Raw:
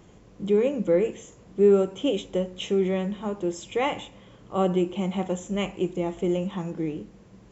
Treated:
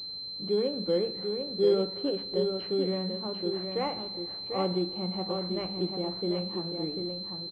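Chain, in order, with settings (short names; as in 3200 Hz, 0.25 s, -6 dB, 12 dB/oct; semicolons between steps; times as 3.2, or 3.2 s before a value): notches 50/100/150/200 Hz; on a send: echo 0.744 s -6 dB; on the sum: Schroeder reverb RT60 3.5 s, combs from 33 ms, DRR 17 dB; pulse-width modulation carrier 4100 Hz; gain -6 dB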